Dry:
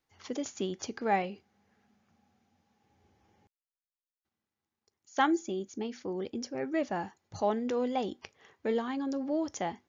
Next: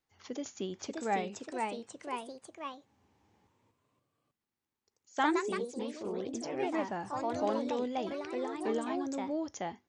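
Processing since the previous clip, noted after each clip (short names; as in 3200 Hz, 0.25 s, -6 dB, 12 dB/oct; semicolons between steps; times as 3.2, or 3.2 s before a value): echoes that change speed 0.619 s, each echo +2 st, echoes 3; gain -4 dB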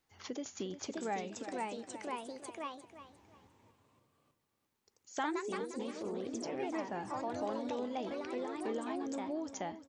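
compressor 2:1, threshold -49 dBFS, peak gain reduction 13.5 dB; on a send: feedback echo 0.352 s, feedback 27%, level -12 dB; on the sum: gain +5.5 dB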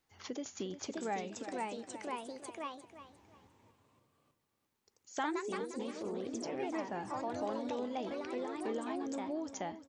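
nothing audible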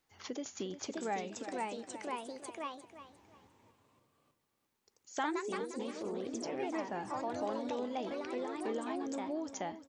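bell 66 Hz -3.5 dB 2.8 oct; gain +1 dB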